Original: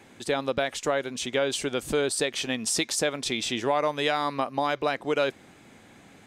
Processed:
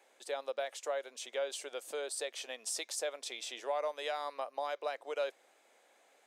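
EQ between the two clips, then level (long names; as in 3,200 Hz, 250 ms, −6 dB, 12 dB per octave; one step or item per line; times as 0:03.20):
four-pole ladder high-pass 460 Hz, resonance 45%
high-shelf EQ 5,100 Hz +6.5 dB
−6.0 dB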